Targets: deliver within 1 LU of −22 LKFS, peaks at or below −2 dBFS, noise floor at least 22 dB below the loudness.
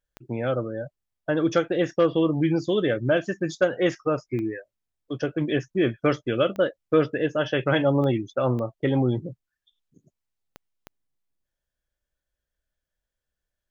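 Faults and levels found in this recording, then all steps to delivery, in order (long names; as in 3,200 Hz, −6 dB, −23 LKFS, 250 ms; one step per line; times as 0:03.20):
number of clicks 7; integrated loudness −24.5 LKFS; sample peak −7.5 dBFS; target loudness −22.0 LKFS
→ click removal
level +2.5 dB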